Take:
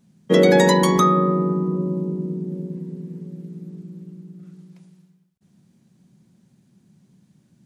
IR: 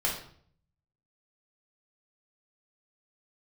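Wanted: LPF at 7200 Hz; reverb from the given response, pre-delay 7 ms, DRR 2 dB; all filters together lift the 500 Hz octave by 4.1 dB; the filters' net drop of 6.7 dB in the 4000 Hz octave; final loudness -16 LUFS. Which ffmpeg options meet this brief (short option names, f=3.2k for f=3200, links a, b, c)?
-filter_complex "[0:a]lowpass=7.2k,equalizer=f=500:t=o:g=5,equalizer=f=4k:t=o:g=-7.5,asplit=2[a][b];[1:a]atrim=start_sample=2205,adelay=7[c];[b][c]afir=irnorm=-1:irlink=0,volume=-10dB[d];[a][d]amix=inputs=2:normalize=0,volume=-1.5dB"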